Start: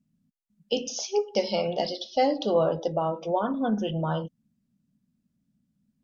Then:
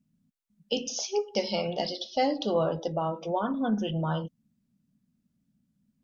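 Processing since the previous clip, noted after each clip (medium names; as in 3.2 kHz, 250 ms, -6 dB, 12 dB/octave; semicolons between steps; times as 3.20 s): dynamic bell 550 Hz, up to -4 dB, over -34 dBFS, Q 0.98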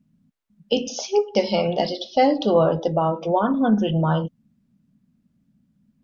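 treble shelf 4.1 kHz -11.5 dB; trim +9 dB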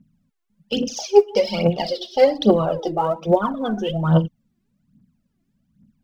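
phaser 1.2 Hz, delay 3 ms, feedback 75%; trim -2.5 dB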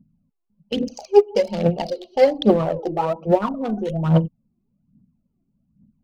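local Wiener filter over 25 samples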